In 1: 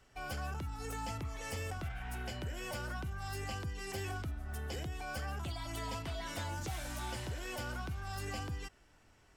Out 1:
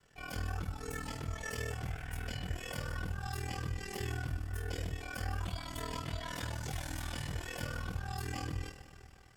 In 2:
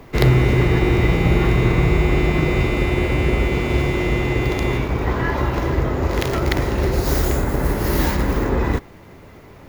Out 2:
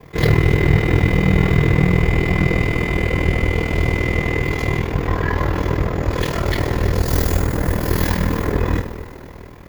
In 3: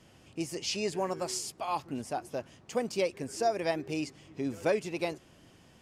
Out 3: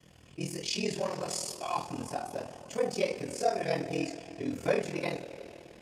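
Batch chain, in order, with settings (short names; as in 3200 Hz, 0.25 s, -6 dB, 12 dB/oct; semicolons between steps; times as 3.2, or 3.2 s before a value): two-slope reverb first 0.3 s, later 3.5 s, from -20 dB, DRR -8 dB; ring modulator 20 Hz; gain -5.5 dB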